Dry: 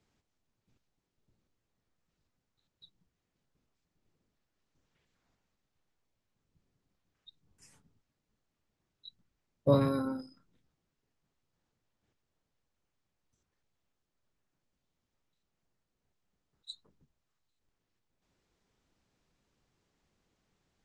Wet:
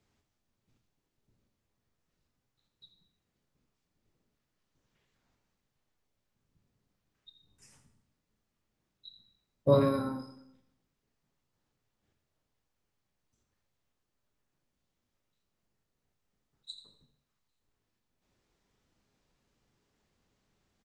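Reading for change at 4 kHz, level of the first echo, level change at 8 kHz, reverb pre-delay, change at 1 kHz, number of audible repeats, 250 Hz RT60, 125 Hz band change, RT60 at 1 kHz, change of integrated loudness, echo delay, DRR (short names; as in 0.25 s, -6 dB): +1.0 dB, -13.0 dB, n/a, 6 ms, +2.0 dB, 1, 0.70 s, +0.5 dB, 0.70 s, +1.5 dB, 84 ms, 5.0 dB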